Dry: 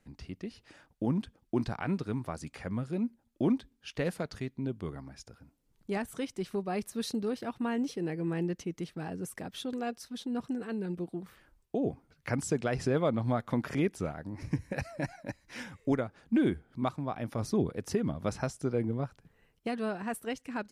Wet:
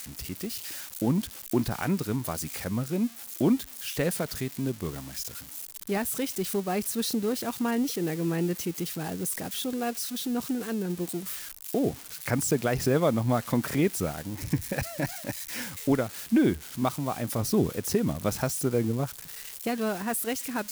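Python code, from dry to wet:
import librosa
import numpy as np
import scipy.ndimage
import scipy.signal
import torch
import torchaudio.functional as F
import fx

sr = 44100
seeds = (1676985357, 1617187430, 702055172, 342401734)

y = x + 0.5 * 10.0 ** (-32.5 / 20.0) * np.diff(np.sign(x), prepend=np.sign(x[:1]))
y = y * 10.0 ** (4.5 / 20.0)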